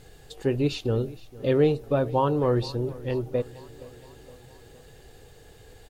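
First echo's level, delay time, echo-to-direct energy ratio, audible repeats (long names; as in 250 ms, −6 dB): −20.0 dB, 467 ms, −18.0 dB, 4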